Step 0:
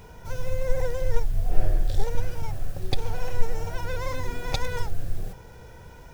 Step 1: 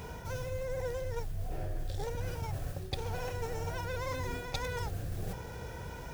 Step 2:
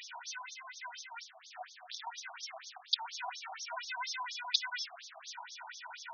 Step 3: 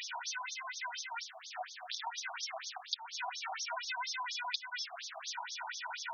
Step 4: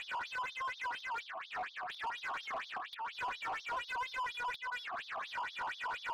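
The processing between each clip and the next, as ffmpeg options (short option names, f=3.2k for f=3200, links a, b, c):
-af "highpass=41,areverse,acompressor=threshold=-37dB:ratio=6,areverse,volume=4dB"
-af "equalizer=f=9.7k:t=o:w=2.3:g=12,afftfilt=real='re*between(b*sr/1024,870*pow(4800/870,0.5+0.5*sin(2*PI*4.2*pts/sr))/1.41,870*pow(4800/870,0.5+0.5*sin(2*PI*4.2*pts/sr))*1.41)':imag='im*between(b*sr/1024,870*pow(4800/870,0.5+0.5*sin(2*PI*4.2*pts/sr))/1.41,870*pow(4800/870,0.5+0.5*sin(2*PI*4.2*pts/sr))*1.41)':win_size=1024:overlap=0.75,volume=5.5dB"
-af "acompressor=threshold=-42dB:ratio=6,volume=6dB"
-filter_complex "[0:a]highpass=490,equalizer=f=1.1k:t=q:w=4:g=10,equalizer=f=1.7k:t=q:w=4:g=4,equalizer=f=2.4k:t=q:w=4:g=4,lowpass=f=3.3k:w=0.5412,lowpass=f=3.3k:w=1.3066,asplit=2[a][b];[b]highpass=f=720:p=1,volume=24dB,asoftclip=type=tanh:threshold=-23dB[c];[a][c]amix=inputs=2:normalize=0,lowpass=f=1.5k:p=1,volume=-6dB,volume=-7dB"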